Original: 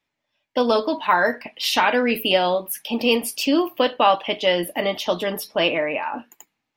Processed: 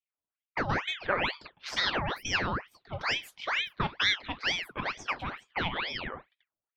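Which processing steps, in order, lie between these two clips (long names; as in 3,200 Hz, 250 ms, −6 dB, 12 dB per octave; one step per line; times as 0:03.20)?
low-pass that shuts in the quiet parts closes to 340 Hz, open at −18.5 dBFS
bass and treble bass −7 dB, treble −14 dB
ring modulator whose carrier an LFO sweeps 1,600 Hz, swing 80%, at 2.2 Hz
level −7.5 dB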